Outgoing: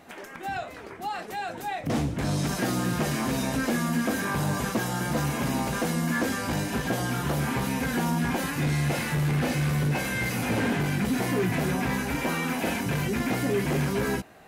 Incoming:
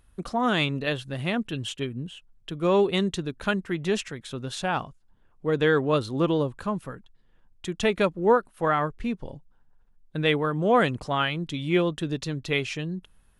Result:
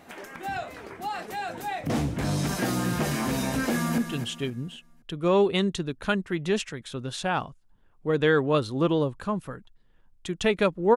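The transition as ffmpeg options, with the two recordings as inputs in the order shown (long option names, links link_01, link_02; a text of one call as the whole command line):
ffmpeg -i cue0.wav -i cue1.wav -filter_complex "[0:a]apad=whole_dur=10.96,atrim=end=10.96,atrim=end=3.982[link_01];[1:a]atrim=start=1.368:end=8.35[link_02];[link_01][link_02]acrossfade=duration=0.004:curve1=hsin:curve2=hsin,asplit=2[link_03][link_04];[link_04]afade=type=in:start_time=3.64:duration=0.01,afade=type=out:start_time=3.98:duration=0.01,aecho=0:1:260|520|780|1040:0.334965|0.117238|0.0410333|0.0143616[link_05];[link_03][link_05]amix=inputs=2:normalize=0" out.wav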